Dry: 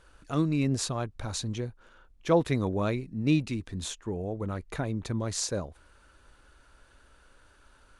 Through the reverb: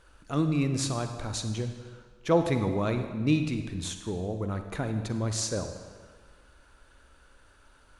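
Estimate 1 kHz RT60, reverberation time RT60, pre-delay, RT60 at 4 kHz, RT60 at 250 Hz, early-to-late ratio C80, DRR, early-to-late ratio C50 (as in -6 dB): 1.6 s, 1.6 s, 37 ms, 1.3 s, 1.5 s, 9.0 dB, 7.0 dB, 7.5 dB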